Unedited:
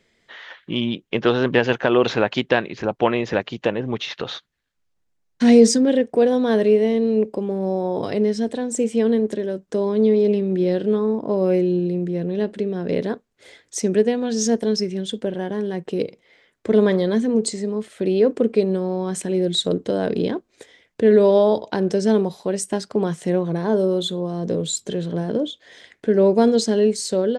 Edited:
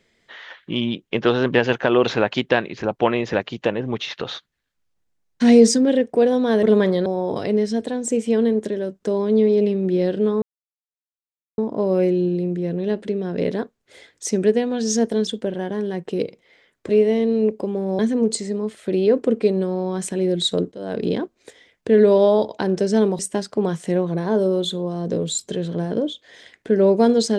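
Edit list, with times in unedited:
0:06.63–0:07.73: swap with 0:16.69–0:17.12
0:11.09: splice in silence 1.16 s
0:14.78–0:15.07: remove
0:19.85–0:20.21: fade in, from −21 dB
0:22.32–0:22.57: remove

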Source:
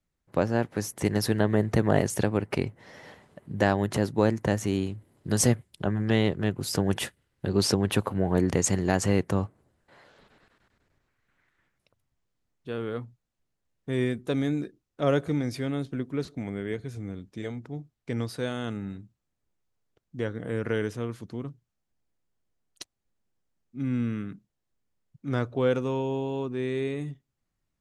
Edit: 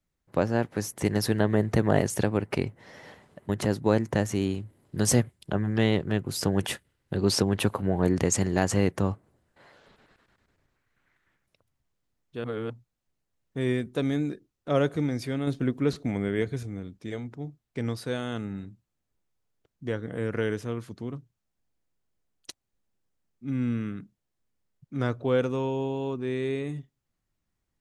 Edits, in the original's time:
0:03.49–0:03.81: remove
0:12.76–0:13.02: reverse
0:15.79–0:16.95: clip gain +5 dB

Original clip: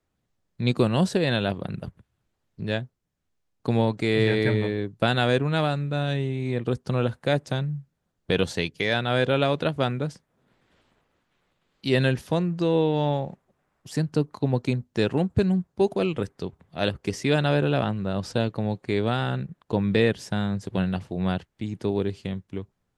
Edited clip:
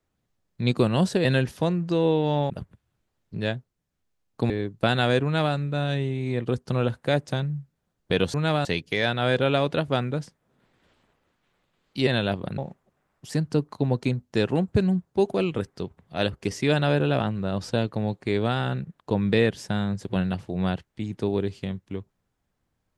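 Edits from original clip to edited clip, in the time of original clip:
0:01.25–0:01.76: swap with 0:11.95–0:13.20
0:03.76–0:04.69: remove
0:05.43–0:05.74: duplicate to 0:08.53

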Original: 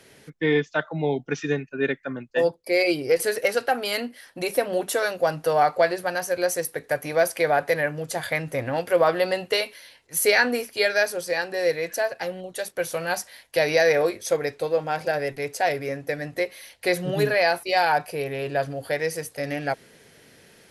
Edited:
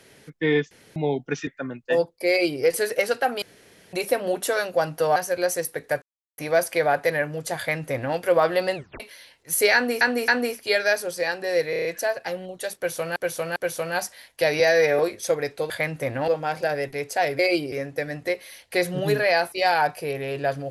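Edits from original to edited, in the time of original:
0:00.71–0:00.96: fill with room tone
0:01.47–0:01.93: remove
0:02.75–0:03.08: duplicate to 0:15.83
0:03.88–0:04.39: fill with room tone
0:05.62–0:06.16: remove
0:07.02: splice in silence 0.36 s
0:08.22–0:08.80: duplicate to 0:14.72
0:09.39: tape stop 0.25 s
0:10.38–0:10.65: repeat, 3 plays
0:11.80: stutter 0.03 s, 6 plays
0:12.71–0:13.11: repeat, 3 plays
0:13.75–0:14.01: time-stretch 1.5×

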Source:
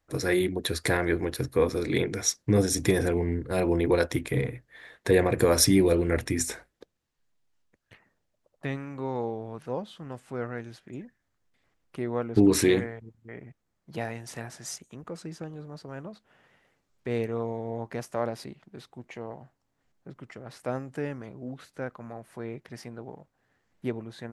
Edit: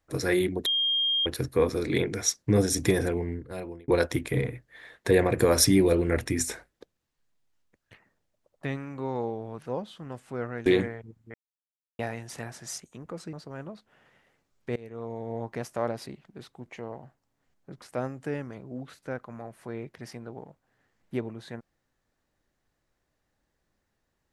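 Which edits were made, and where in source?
0:00.66–0:01.26: beep over 3,220 Hz −22.5 dBFS
0:02.90–0:03.88: fade out
0:10.66–0:12.64: remove
0:13.32–0:13.97: silence
0:15.31–0:15.71: remove
0:17.14–0:17.73: fade in, from −24 dB
0:20.20–0:20.53: remove

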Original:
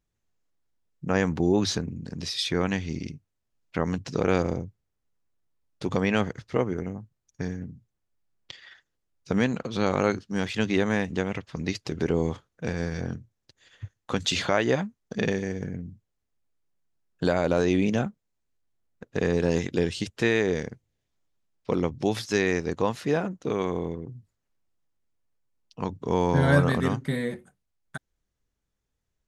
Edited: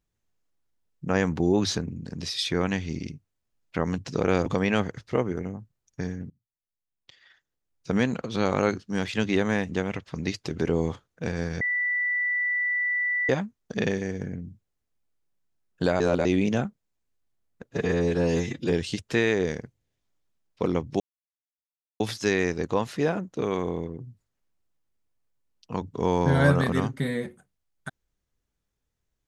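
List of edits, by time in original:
0:04.46–0:05.87: remove
0:07.71–0:09.36: fade in quadratic, from −21.5 dB
0:13.02–0:14.70: beep over 1,970 Hz −23 dBFS
0:17.41–0:17.66: reverse
0:19.14–0:19.80: time-stretch 1.5×
0:22.08: splice in silence 1.00 s

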